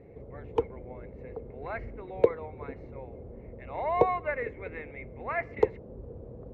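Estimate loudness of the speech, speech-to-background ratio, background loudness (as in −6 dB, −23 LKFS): −35.5 LKFS, −1.5 dB, −34.0 LKFS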